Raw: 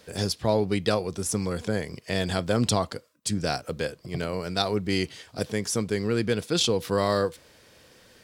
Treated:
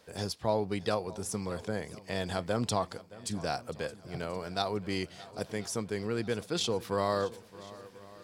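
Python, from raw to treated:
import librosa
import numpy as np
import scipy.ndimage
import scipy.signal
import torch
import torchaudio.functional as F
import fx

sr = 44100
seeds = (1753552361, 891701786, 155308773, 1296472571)

y = fx.peak_eq(x, sr, hz=880.0, db=6.0, octaves=1.2)
y = fx.echo_swing(y, sr, ms=1033, ratio=1.5, feedback_pct=41, wet_db=-19.0)
y = y * librosa.db_to_amplitude(-8.5)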